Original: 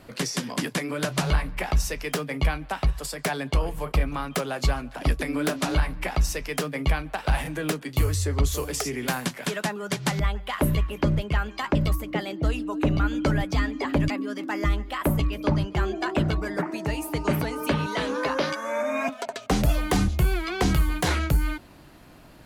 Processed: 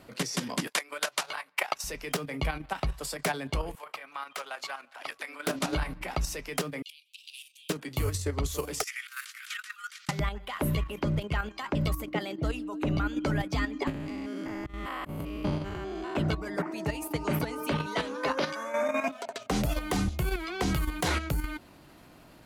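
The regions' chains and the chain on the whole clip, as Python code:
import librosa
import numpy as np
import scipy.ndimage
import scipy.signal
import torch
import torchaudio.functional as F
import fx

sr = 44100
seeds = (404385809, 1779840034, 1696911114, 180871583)

y = fx.chain(x, sr, fx.highpass(hz=760.0, slope=12),
    fx.transient(attack_db=7, sustain_db=-10), at=(0.67, 1.84))
y = fx.chain(y, sr, fx.highpass(hz=980.0, slope=12),
    fx.high_shelf(hz=4200.0, db=-7.0), at=(3.75, 5.47))
y = fx.chain(y, sr, fx.steep_highpass(hz=2700.0, slope=72),
    fx.high_shelf(hz=4000.0, db=-7.0), at=(6.82, 7.7))
y = fx.chain(y, sr, fx.steep_highpass(hz=1200.0, slope=96),
    fx.over_compress(threshold_db=-36.0, ratio=-0.5), at=(8.83, 10.09))
y = fx.chain(y, sr, fx.spec_steps(hold_ms=200),
    fx.auto_swell(attack_ms=265.0),
    fx.band_squash(depth_pct=100), at=(13.87, 16.16))
y = fx.low_shelf(y, sr, hz=80.0, db=-7.0)
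y = fx.notch(y, sr, hz=1700.0, q=26.0)
y = fx.level_steps(y, sr, step_db=9)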